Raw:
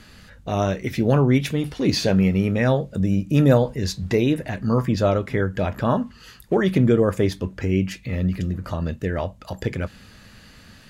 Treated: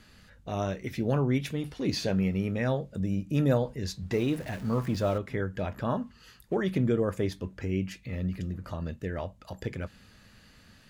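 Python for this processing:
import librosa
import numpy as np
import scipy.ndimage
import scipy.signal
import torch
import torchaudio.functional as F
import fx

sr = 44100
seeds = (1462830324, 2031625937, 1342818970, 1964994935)

y = fx.zero_step(x, sr, step_db=-31.5, at=(4.12, 5.18))
y = y * librosa.db_to_amplitude(-9.0)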